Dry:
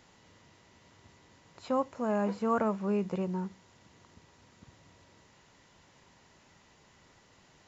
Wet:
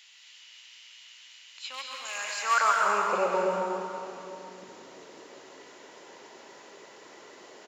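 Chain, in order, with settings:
0:02.05–0:02.76: bass and treble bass −11 dB, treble +15 dB
hard clipping −22.5 dBFS, distortion −22 dB
high-pass filter sweep 2,800 Hz → 390 Hz, 0:02.03–0:03.60
single-tap delay 839 ms −18.5 dB
dense smooth reverb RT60 2.4 s, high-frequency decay 0.8×, pre-delay 120 ms, DRR −1.5 dB
level +7 dB

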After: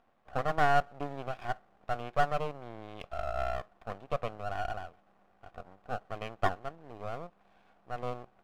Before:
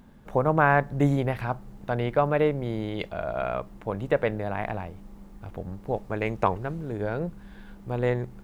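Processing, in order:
formant filter a
half-wave rectification
level +5.5 dB

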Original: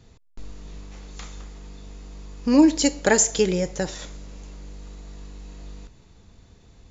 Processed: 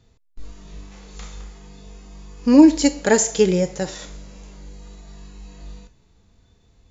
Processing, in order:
harmonic and percussive parts rebalanced percussive −8 dB
noise reduction from a noise print of the clip's start 8 dB
level +5 dB

